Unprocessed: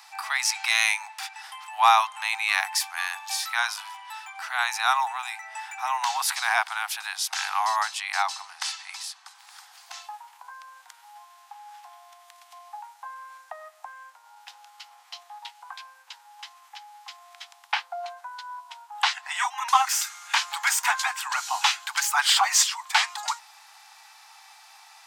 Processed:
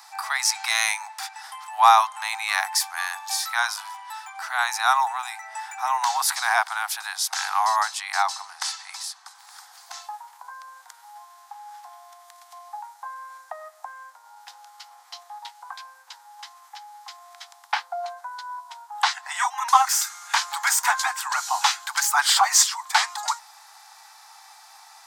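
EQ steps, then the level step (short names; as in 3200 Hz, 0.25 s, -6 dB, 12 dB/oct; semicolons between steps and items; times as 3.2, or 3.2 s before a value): bell 2700 Hz -9 dB 0.81 oct; +4.0 dB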